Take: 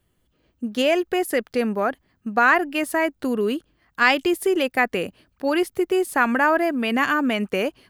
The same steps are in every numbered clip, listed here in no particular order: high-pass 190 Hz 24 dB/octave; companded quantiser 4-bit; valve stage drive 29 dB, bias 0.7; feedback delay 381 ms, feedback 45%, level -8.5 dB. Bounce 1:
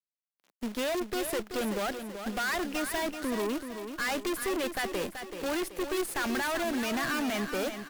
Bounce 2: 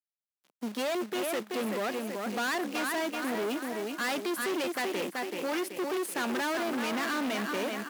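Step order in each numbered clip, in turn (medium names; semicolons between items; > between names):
companded quantiser > high-pass > valve stage > feedback delay; feedback delay > companded quantiser > valve stage > high-pass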